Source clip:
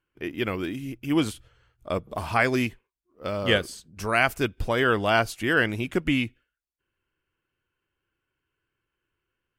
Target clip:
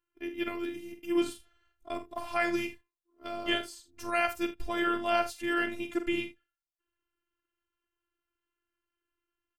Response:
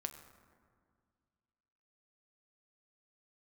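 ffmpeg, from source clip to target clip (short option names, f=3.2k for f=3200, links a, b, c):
-af "aecho=1:1:46|78:0.335|0.133,afftfilt=real='hypot(re,im)*cos(PI*b)':imag='0':win_size=512:overlap=0.75,volume=-4dB"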